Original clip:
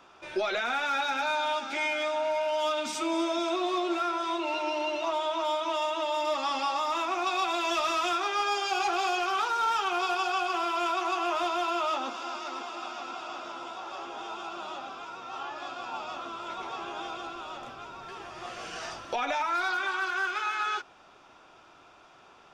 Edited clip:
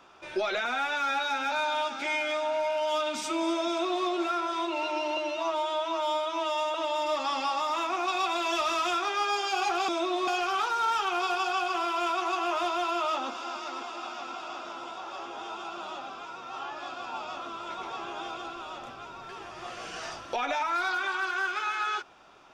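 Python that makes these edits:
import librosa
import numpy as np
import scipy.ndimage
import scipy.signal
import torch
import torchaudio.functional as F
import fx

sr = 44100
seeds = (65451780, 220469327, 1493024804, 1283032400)

y = fx.edit(x, sr, fx.stretch_span(start_s=0.65, length_s=0.58, factor=1.5),
    fx.duplicate(start_s=3.39, length_s=0.39, to_s=9.07),
    fx.stretch_span(start_s=4.88, length_s=1.05, factor=1.5), tone=tone)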